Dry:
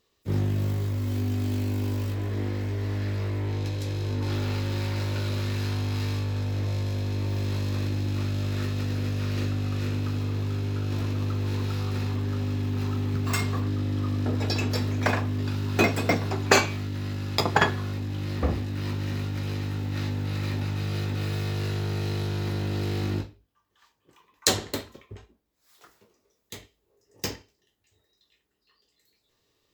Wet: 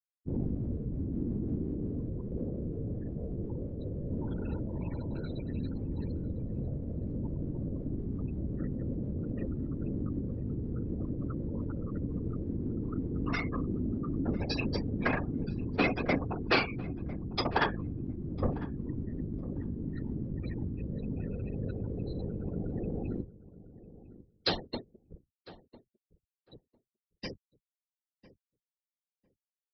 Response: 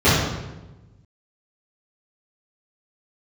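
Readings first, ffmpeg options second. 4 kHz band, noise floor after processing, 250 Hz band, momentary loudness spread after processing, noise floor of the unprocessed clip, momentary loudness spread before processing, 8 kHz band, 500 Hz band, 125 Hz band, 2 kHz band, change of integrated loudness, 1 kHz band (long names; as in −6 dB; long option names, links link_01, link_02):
−8.5 dB, below −85 dBFS, −3.0 dB, 7 LU, −73 dBFS, 6 LU, below −30 dB, −5.5 dB, −9.5 dB, −7.0 dB, −7.0 dB, −7.0 dB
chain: -filter_complex "[0:a]afftfilt=real='re*gte(hypot(re,im),0.0398)':imag='im*gte(hypot(re,im),0.0398)':win_size=1024:overlap=0.75,aecho=1:1:4.3:0.43,aresample=11025,asoftclip=type=tanh:threshold=-14.5dB,aresample=44100,afftfilt=real='hypot(re,im)*cos(2*PI*random(0))':imag='hypot(re,im)*sin(2*PI*random(1))':win_size=512:overlap=0.75,asplit=2[link_01][link_02];[link_02]adelay=1001,lowpass=frequency=1300:poles=1,volume=-17dB,asplit=2[link_03][link_04];[link_04]adelay=1001,lowpass=frequency=1300:poles=1,volume=0.18[link_05];[link_01][link_03][link_05]amix=inputs=3:normalize=0,volume=1.5dB"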